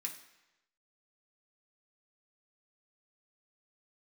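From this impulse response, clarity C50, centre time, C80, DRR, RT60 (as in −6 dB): 9.5 dB, 18 ms, 12.0 dB, 0.0 dB, 1.0 s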